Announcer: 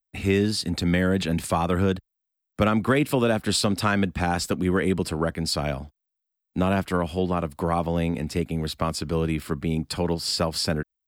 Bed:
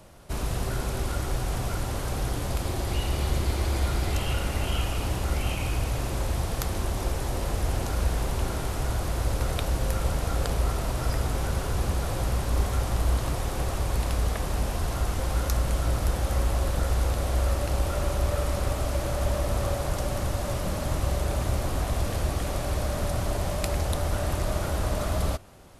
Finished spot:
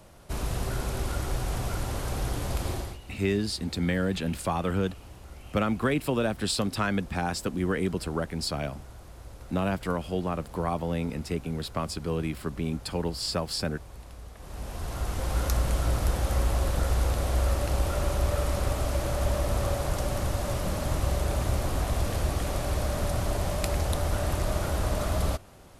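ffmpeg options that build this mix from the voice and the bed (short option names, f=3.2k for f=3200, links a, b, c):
-filter_complex "[0:a]adelay=2950,volume=-5dB[a];[1:a]volume=16.5dB,afade=t=out:st=2.72:d=0.26:silence=0.141254,afade=t=in:st=14.36:d=1.09:silence=0.125893[b];[a][b]amix=inputs=2:normalize=0"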